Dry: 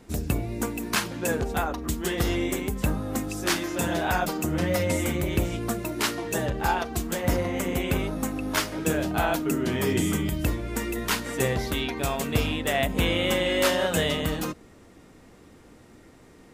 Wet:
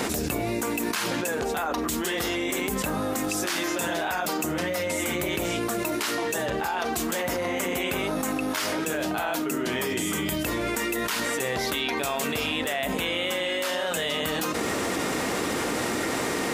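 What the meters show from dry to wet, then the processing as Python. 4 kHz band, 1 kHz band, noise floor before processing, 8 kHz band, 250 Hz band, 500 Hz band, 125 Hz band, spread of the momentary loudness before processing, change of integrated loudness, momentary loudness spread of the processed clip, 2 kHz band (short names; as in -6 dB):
+1.5 dB, +1.0 dB, -52 dBFS, +2.5 dB, -1.0 dB, 0.0 dB, -8.0 dB, 6 LU, -0.5 dB, 1 LU, +2.0 dB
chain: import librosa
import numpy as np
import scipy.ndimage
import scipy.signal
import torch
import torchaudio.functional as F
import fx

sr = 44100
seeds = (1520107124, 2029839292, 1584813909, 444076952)

y = fx.highpass(x, sr, hz=550.0, slope=6)
y = fx.env_flatten(y, sr, amount_pct=100)
y = y * librosa.db_to_amplitude(-6.5)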